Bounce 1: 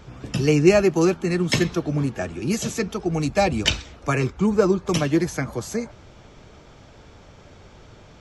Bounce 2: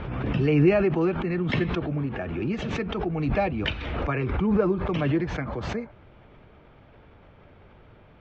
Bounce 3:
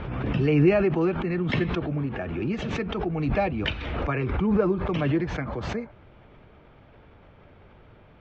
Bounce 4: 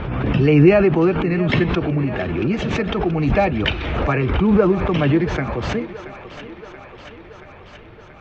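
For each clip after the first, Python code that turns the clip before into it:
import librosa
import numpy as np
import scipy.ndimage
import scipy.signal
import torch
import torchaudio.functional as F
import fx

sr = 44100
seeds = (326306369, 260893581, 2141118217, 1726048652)

y1 = scipy.signal.sosfilt(scipy.signal.butter(4, 2900.0, 'lowpass', fs=sr, output='sos'), x)
y1 = fx.pre_swell(y1, sr, db_per_s=30.0)
y1 = F.gain(torch.from_numpy(y1), -5.5).numpy()
y2 = y1
y3 = fx.echo_thinned(y2, sr, ms=679, feedback_pct=72, hz=310.0, wet_db=-13.5)
y3 = F.gain(torch.from_numpy(y3), 7.5).numpy()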